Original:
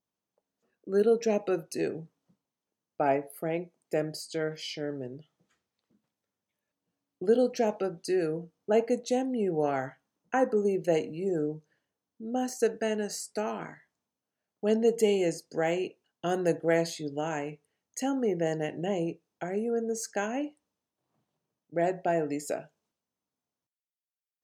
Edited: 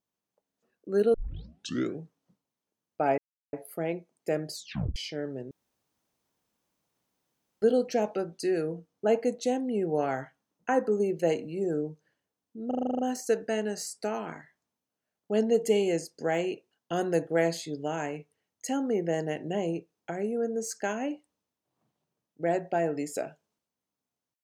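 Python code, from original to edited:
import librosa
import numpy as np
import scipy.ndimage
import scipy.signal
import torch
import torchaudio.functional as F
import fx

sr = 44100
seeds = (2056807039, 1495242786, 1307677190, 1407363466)

y = fx.edit(x, sr, fx.tape_start(start_s=1.14, length_s=0.85),
    fx.insert_silence(at_s=3.18, length_s=0.35),
    fx.tape_stop(start_s=4.18, length_s=0.43),
    fx.room_tone_fill(start_s=5.16, length_s=2.11),
    fx.stutter(start_s=12.32, slice_s=0.04, count=9), tone=tone)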